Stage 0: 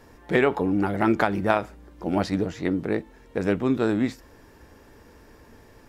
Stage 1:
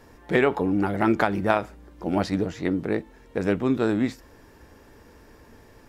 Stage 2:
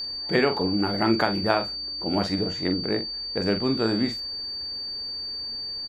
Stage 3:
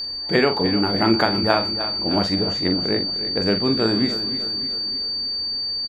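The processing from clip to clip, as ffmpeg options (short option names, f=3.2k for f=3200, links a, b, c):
-af anull
-filter_complex "[0:a]aeval=exprs='val(0)+0.0447*sin(2*PI*4600*n/s)':c=same,asplit=2[a][b];[b]adelay=44,volume=-9dB[c];[a][c]amix=inputs=2:normalize=0,volume=-1.5dB"
-af "aecho=1:1:305|610|915|1220|1525|1830:0.266|0.141|0.0747|0.0396|0.021|0.0111,volume=3.5dB"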